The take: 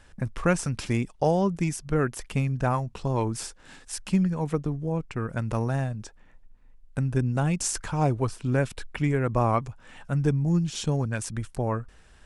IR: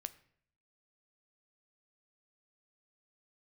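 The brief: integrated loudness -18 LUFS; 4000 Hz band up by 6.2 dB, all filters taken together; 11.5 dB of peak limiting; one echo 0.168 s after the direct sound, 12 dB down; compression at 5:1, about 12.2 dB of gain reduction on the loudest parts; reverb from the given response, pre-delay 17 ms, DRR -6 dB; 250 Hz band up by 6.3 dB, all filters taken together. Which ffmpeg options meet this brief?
-filter_complex "[0:a]equalizer=f=250:t=o:g=9,equalizer=f=4k:t=o:g=8.5,acompressor=threshold=-28dB:ratio=5,alimiter=level_in=1.5dB:limit=-24dB:level=0:latency=1,volume=-1.5dB,aecho=1:1:168:0.251,asplit=2[a][b];[1:a]atrim=start_sample=2205,adelay=17[c];[b][c]afir=irnorm=-1:irlink=0,volume=9dB[d];[a][d]amix=inputs=2:normalize=0,volume=10dB"

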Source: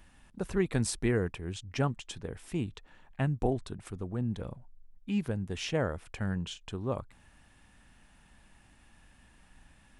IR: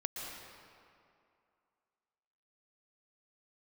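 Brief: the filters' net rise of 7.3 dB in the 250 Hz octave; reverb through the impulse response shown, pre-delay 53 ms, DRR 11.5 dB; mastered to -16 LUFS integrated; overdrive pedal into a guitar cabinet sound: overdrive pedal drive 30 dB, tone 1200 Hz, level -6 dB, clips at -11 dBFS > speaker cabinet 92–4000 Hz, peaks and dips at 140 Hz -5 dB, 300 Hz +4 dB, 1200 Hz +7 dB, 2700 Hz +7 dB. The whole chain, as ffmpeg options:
-filter_complex "[0:a]equalizer=f=250:t=o:g=8.5,asplit=2[a][b];[1:a]atrim=start_sample=2205,adelay=53[c];[b][c]afir=irnorm=-1:irlink=0,volume=-13dB[d];[a][d]amix=inputs=2:normalize=0,asplit=2[e][f];[f]highpass=f=720:p=1,volume=30dB,asoftclip=type=tanh:threshold=-11dB[g];[e][g]amix=inputs=2:normalize=0,lowpass=f=1.2k:p=1,volume=-6dB,highpass=92,equalizer=f=140:t=q:w=4:g=-5,equalizer=f=300:t=q:w=4:g=4,equalizer=f=1.2k:t=q:w=4:g=7,equalizer=f=2.7k:t=q:w=4:g=7,lowpass=f=4k:w=0.5412,lowpass=f=4k:w=1.3066,volume=6dB"

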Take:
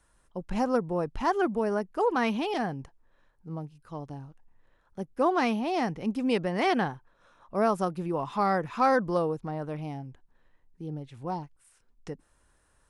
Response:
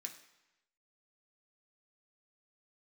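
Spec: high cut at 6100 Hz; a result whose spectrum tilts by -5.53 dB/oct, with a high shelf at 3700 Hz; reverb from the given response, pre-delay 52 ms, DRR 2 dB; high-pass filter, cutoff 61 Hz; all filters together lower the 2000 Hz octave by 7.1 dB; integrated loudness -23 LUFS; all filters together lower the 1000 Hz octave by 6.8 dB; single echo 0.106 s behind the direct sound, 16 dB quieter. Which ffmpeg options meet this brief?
-filter_complex "[0:a]highpass=61,lowpass=6.1k,equalizer=f=1k:t=o:g=-8.5,equalizer=f=2k:t=o:g=-8,highshelf=f=3.7k:g=7,aecho=1:1:106:0.158,asplit=2[a][b];[1:a]atrim=start_sample=2205,adelay=52[c];[b][c]afir=irnorm=-1:irlink=0,volume=2dB[d];[a][d]amix=inputs=2:normalize=0,volume=7dB"

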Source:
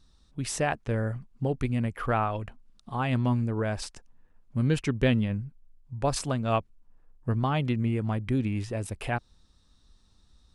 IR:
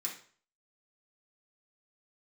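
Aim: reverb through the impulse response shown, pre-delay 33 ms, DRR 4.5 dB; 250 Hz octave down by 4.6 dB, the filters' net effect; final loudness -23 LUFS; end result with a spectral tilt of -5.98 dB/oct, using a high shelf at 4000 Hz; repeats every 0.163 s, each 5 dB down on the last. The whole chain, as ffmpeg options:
-filter_complex "[0:a]equalizer=f=250:t=o:g=-5.5,highshelf=f=4k:g=-3.5,aecho=1:1:163|326|489|652|815|978|1141:0.562|0.315|0.176|0.0988|0.0553|0.031|0.0173,asplit=2[a][b];[1:a]atrim=start_sample=2205,adelay=33[c];[b][c]afir=irnorm=-1:irlink=0,volume=-5dB[d];[a][d]amix=inputs=2:normalize=0,volume=6dB"

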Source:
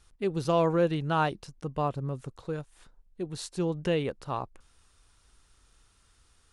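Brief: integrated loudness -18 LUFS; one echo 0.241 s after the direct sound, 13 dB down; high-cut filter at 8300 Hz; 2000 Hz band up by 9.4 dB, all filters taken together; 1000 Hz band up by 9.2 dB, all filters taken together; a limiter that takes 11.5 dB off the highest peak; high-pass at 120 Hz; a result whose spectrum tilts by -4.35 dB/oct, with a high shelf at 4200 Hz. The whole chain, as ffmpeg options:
-af "highpass=120,lowpass=8.3k,equalizer=f=1k:t=o:g=9,equalizer=f=2k:t=o:g=8,highshelf=f=4.2k:g=6.5,alimiter=limit=-17dB:level=0:latency=1,aecho=1:1:241:0.224,volume=12.5dB"

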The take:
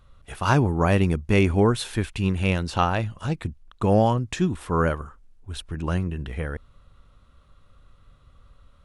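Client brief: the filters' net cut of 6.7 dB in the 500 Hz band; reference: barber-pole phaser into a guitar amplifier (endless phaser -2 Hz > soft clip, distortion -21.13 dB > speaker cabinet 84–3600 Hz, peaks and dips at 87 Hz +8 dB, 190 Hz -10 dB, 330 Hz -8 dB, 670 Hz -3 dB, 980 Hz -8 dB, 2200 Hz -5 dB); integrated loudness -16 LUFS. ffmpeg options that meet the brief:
-filter_complex "[0:a]equalizer=f=500:t=o:g=-5,asplit=2[a][b];[b]afreqshift=-2[c];[a][c]amix=inputs=2:normalize=1,asoftclip=threshold=-14dB,highpass=84,equalizer=f=87:t=q:w=4:g=8,equalizer=f=190:t=q:w=4:g=-10,equalizer=f=330:t=q:w=4:g=-8,equalizer=f=670:t=q:w=4:g=-3,equalizer=f=980:t=q:w=4:g=-8,equalizer=f=2.2k:t=q:w=4:g=-5,lowpass=f=3.6k:w=0.5412,lowpass=f=3.6k:w=1.3066,volume=14dB"

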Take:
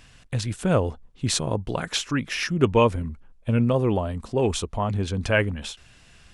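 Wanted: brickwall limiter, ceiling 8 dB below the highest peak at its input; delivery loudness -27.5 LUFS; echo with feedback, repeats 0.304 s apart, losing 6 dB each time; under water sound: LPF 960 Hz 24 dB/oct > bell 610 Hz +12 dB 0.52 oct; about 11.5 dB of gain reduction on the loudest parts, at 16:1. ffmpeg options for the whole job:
-af "acompressor=threshold=-24dB:ratio=16,alimiter=limit=-21dB:level=0:latency=1,lowpass=f=960:w=0.5412,lowpass=f=960:w=1.3066,equalizer=f=610:t=o:w=0.52:g=12,aecho=1:1:304|608|912|1216|1520|1824:0.501|0.251|0.125|0.0626|0.0313|0.0157,volume=1.5dB"

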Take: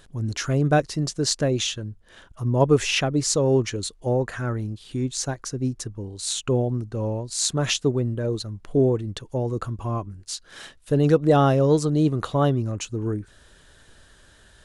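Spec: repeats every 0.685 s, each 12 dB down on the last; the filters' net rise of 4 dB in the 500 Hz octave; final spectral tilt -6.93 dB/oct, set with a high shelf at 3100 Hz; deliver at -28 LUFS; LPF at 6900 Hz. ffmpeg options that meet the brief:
-af "lowpass=6.9k,equalizer=f=500:t=o:g=5,highshelf=f=3.1k:g=-8.5,aecho=1:1:685|1370|2055:0.251|0.0628|0.0157,volume=-6.5dB"

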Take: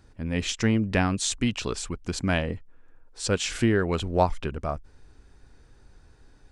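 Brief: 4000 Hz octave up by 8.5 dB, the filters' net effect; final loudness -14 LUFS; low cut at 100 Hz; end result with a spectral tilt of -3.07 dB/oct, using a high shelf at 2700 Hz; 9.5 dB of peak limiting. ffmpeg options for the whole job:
-af "highpass=100,highshelf=f=2.7k:g=6.5,equalizer=f=4k:t=o:g=5.5,volume=11.5dB,alimiter=limit=0dB:level=0:latency=1"

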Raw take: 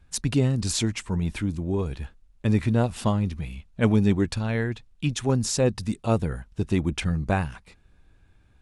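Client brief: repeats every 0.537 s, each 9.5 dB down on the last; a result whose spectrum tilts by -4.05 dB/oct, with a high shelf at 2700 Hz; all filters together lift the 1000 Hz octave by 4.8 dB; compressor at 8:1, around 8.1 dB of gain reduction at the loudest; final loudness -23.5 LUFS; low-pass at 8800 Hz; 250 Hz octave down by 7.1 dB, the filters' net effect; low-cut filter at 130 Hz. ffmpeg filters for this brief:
-af "highpass=130,lowpass=8.8k,equalizer=f=250:t=o:g=-9,equalizer=f=1k:t=o:g=6.5,highshelf=f=2.7k:g=3.5,acompressor=threshold=-26dB:ratio=8,aecho=1:1:537|1074|1611|2148:0.335|0.111|0.0365|0.012,volume=9dB"

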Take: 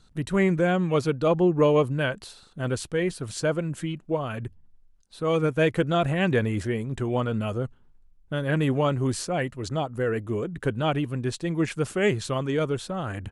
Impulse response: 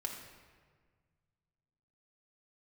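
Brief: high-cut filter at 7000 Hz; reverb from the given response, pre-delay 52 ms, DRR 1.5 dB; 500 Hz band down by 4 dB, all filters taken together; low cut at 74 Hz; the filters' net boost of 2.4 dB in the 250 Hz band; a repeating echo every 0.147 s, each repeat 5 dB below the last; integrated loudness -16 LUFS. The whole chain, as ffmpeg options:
-filter_complex "[0:a]highpass=74,lowpass=7k,equalizer=f=250:t=o:g=6,equalizer=f=500:t=o:g=-7,aecho=1:1:147|294|441|588|735|882|1029:0.562|0.315|0.176|0.0988|0.0553|0.031|0.0173,asplit=2[a][b];[1:a]atrim=start_sample=2205,adelay=52[c];[b][c]afir=irnorm=-1:irlink=0,volume=-1.5dB[d];[a][d]amix=inputs=2:normalize=0,volume=6.5dB"

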